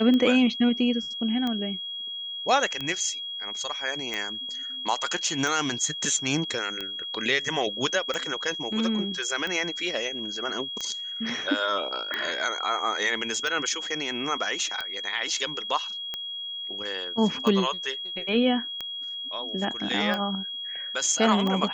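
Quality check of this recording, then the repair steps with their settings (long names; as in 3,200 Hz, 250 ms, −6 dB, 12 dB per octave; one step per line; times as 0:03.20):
scratch tick 45 rpm −17 dBFS
whistle 3,300 Hz −32 dBFS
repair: click removal
notch filter 3,300 Hz, Q 30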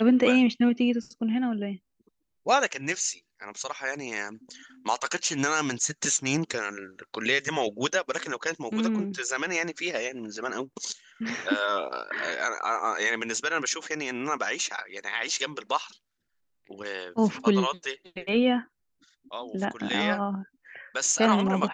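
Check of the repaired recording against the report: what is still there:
none of them is left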